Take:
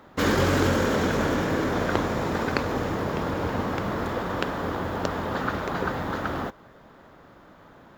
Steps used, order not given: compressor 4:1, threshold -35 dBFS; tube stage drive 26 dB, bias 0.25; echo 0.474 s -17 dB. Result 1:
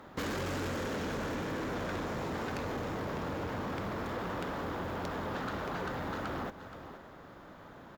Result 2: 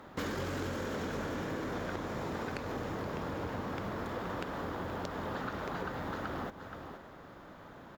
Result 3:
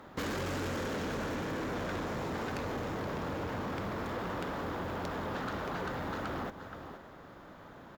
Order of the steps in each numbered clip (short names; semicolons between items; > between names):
tube stage > echo > compressor; echo > compressor > tube stage; echo > tube stage > compressor